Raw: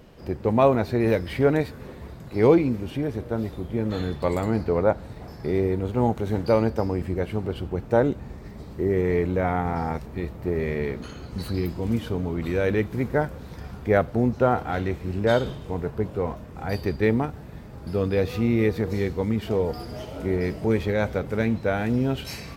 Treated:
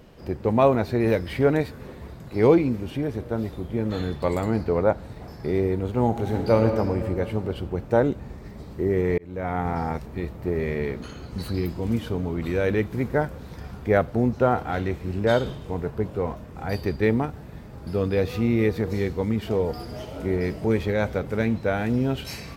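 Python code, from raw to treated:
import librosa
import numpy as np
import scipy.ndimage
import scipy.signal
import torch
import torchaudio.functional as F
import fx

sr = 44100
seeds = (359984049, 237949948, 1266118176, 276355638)

y = fx.reverb_throw(x, sr, start_s=6.06, length_s=0.7, rt60_s=2.5, drr_db=4.0)
y = fx.edit(y, sr, fx.fade_in_span(start_s=9.18, length_s=0.47), tone=tone)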